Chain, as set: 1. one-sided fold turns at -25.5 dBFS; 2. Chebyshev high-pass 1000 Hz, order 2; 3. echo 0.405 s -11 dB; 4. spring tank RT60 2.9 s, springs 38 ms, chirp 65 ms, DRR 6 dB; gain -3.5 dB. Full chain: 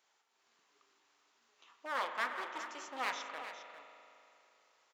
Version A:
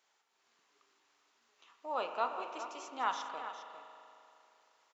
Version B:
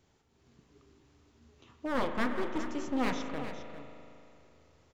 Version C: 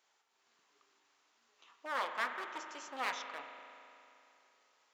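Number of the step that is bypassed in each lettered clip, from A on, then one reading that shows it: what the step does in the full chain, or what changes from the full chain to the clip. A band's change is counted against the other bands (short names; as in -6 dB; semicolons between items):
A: 1, 2 kHz band -8.5 dB; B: 2, 250 Hz band +21.5 dB; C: 3, momentary loudness spread change +2 LU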